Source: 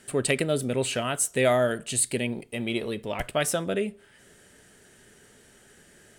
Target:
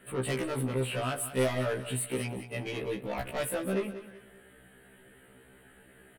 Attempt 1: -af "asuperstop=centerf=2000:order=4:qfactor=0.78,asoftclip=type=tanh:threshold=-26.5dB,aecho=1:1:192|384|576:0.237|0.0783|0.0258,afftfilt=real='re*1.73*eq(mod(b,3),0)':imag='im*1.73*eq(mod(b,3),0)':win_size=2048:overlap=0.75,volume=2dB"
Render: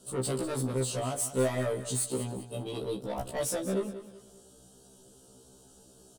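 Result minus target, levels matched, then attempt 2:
2000 Hz band -7.0 dB
-af "asuperstop=centerf=5800:order=4:qfactor=0.78,asoftclip=type=tanh:threshold=-26.5dB,aecho=1:1:192|384|576:0.237|0.0783|0.0258,afftfilt=real='re*1.73*eq(mod(b,3),0)':imag='im*1.73*eq(mod(b,3),0)':win_size=2048:overlap=0.75,volume=2dB"

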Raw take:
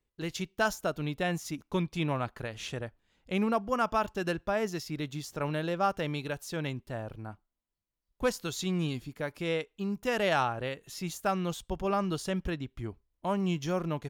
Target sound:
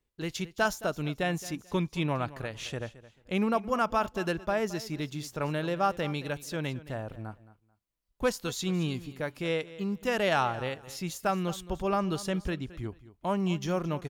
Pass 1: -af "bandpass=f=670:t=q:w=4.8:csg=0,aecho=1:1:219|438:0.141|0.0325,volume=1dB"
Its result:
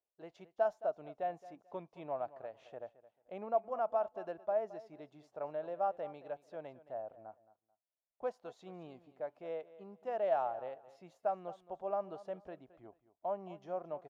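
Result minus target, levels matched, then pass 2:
500 Hz band +3.0 dB
-af "aecho=1:1:219|438:0.141|0.0325,volume=1dB"

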